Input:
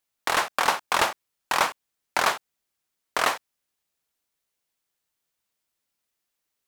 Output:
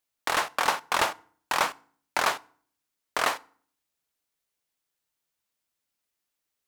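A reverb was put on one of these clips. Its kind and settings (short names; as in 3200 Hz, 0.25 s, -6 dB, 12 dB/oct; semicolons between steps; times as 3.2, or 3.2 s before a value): FDN reverb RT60 0.5 s, low-frequency decay 1.35×, high-frequency decay 0.75×, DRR 18 dB; gain -2.5 dB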